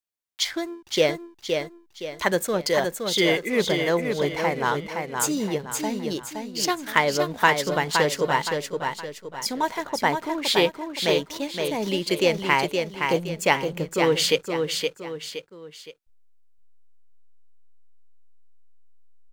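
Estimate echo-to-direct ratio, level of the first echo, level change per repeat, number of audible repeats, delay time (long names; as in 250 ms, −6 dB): −4.5 dB, −5.0 dB, −8.0 dB, 3, 518 ms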